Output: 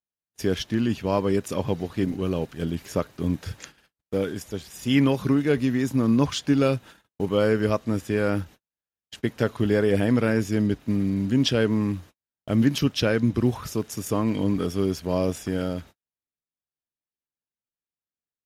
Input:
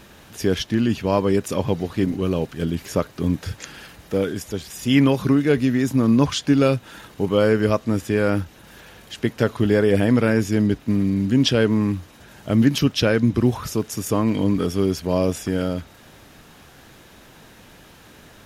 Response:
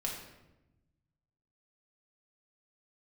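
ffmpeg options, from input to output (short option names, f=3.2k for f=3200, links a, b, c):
-filter_complex "[0:a]agate=range=-51dB:threshold=-37dB:ratio=16:detection=peak,asplit=2[a][b];[b]aeval=exprs='sgn(val(0))*max(abs(val(0))-0.0224,0)':c=same,volume=-10dB[c];[a][c]amix=inputs=2:normalize=0,volume=-6dB"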